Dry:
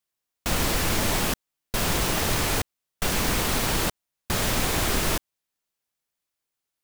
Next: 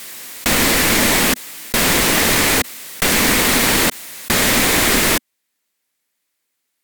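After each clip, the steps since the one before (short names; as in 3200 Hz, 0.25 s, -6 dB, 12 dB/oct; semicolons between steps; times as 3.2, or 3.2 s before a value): ten-band EQ 250 Hz +11 dB, 500 Hz +6 dB, 1000 Hz +4 dB, 2000 Hz +12 dB, 4000 Hz +6 dB, 8000 Hz +6 dB, 16000 Hz +12 dB; backwards sustainer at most 27 dB/s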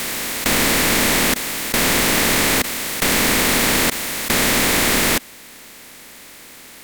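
per-bin compression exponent 0.4; gain -6 dB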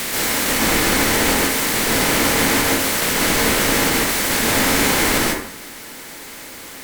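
limiter -13 dBFS, peak gain reduction 9.5 dB; plate-style reverb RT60 0.62 s, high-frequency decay 0.55×, pre-delay 0.12 s, DRR -5 dB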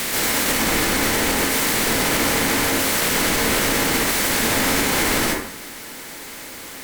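limiter -9.5 dBFS, peak gain reduction 5 dB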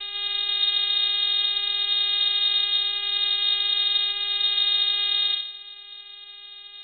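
vocoder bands 4, square 206 Hz; high shelf 2600 Hz -10.5 dB; inverted band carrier 3900 Hz; gain -2 dB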